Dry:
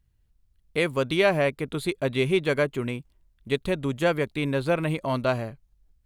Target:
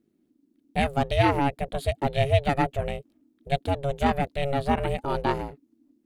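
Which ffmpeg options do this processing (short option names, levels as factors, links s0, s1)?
-af "equalizer=f=350:t=o:w=1.3:g=5.5,aeval=exprs='val(0)*sin(2*PI*280*n/s)':c=same"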